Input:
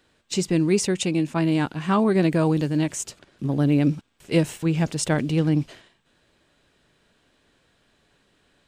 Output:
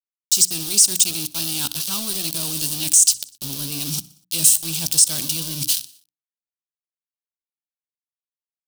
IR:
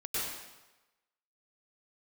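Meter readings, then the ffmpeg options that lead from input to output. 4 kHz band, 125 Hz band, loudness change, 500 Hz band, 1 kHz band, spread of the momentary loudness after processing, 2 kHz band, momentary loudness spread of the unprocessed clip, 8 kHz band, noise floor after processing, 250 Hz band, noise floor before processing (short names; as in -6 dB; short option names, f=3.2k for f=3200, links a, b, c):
+12.5 dB, -11.0 dB, +5.0 dB, -16.5 dB, -11.5 dB, 12 LU, -4.5 dB, 8 LU, +18.0 dB, under -85 dBFS, -13.5 dB, -65 dBFS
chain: -af "areverse,acompressor=threshold=-35dB:ratio=10,areverse,equalizer=f=500:t=o:w=1:g=-9,equalizer=f=4k:t=o:w=1:g=-4,equalizer=f=8k:t=o:w=1:g=8,aeval=exprs='val(0)*gte(abs(val(0)),0.00631)':c=same,aexciter=amount=15.1:drive=7.5:freq=3.1k,bandreject=f=60:t=h:w=6,bandreject=f=120:t=h:w=6,bandreject=f=180:t=h:w=6,bandreject=f=240:t=h:w=6,bandreject=f=300:t=h:w=6,alimiter=limit=-3.5dB:level=0:latency=1:release=70,equalizer=f=7.2k:w=2.9:g=-8,aecho=1:1:61|122|183|244:0.0794|0.0469|0.0277|0.0163,acontrast=35,volume=1dB"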